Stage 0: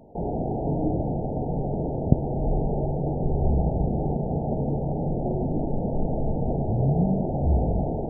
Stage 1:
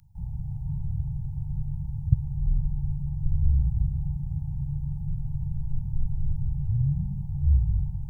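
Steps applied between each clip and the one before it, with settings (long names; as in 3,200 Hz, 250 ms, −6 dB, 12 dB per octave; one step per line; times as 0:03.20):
inverse Chebyshev band-stop filter 280–630 Hz, stop band 60 dB
bass and treble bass +2 dB, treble +9 dB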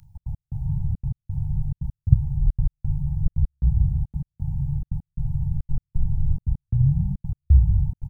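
double-tracking delay 31 ms −12.5 dB
gate pattern "xx.x..xxx" 174 BPM −60 dB
level +5.5 dB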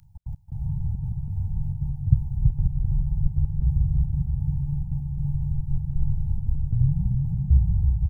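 bouncing-ball delay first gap 330 ms, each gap 0.6×, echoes 5
level −3 dB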